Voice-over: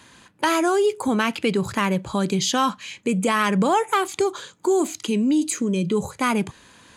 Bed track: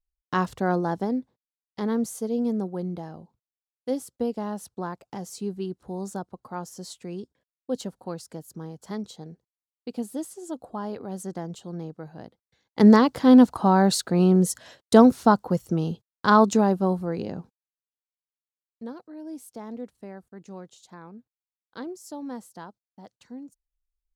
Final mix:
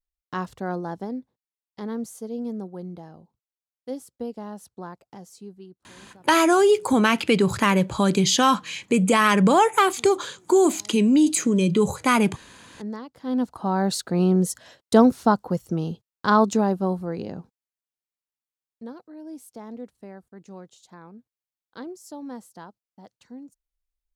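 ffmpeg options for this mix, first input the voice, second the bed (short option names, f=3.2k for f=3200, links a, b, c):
-filter_complex "[0:a]adelay=5850,volume=2.5dB[a];[1:a]volume=13.5dB,afade=t=out:st=4.93:d=0.98:silence=0.188365,afade=t=in:st=13.14:d=1.01:silence=0.11885[b];[a][b]amix=inputs=2:normalize=0"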